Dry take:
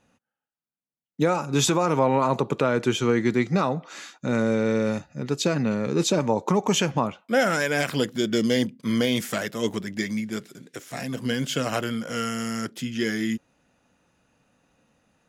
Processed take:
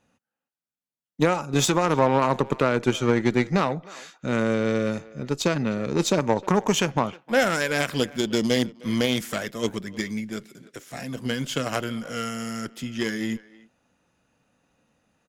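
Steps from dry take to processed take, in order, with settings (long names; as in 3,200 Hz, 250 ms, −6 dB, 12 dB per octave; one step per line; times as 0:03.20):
harmonic generator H 3 −16 dB, 8 −34 dB, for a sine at −10 dBFS
far-end echo of a speakerphone 310 ms, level −20 dB
level +3 dB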